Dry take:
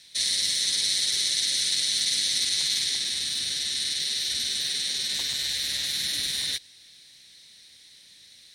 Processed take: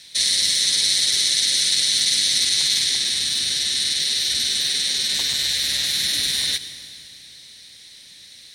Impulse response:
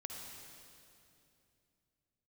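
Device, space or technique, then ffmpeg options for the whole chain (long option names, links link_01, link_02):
ducked reverb: -filter_complex "[0:a]asplit=3[link_01][link_02][link_03];[1:a]atrim=start_sample=2205[link_04];[link_02][link_04]afir=irnorm=-1:irlink=0[link_05];[link_03]apad=whole_len=376645[link_06];[link_05][link_06]sidechaincompress=threshold=-30dB:ratio=8:attack=16:release=111,volume=-5dB[link_07];[link_01][link_07]amix=inputs=2:normalize=0,volume=5dB"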